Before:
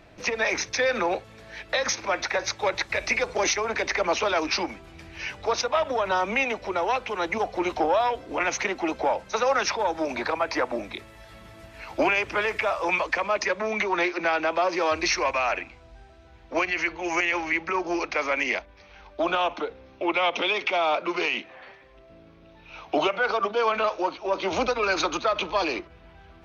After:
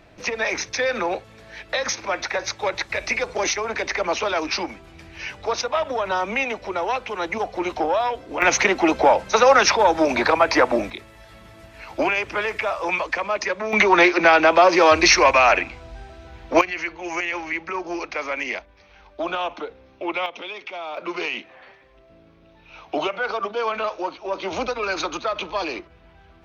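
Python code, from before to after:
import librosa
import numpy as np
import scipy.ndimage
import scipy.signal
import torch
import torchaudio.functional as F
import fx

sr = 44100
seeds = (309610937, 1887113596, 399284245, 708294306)

y = fx.gain(x, sr, db=fx.steps((0.0, 1.0), (8.42, 9.0), (10.9, 1.0), (13.73, 10.0), (16.61, -1.5), (20.26, -9.0), (20.97, -1.0)))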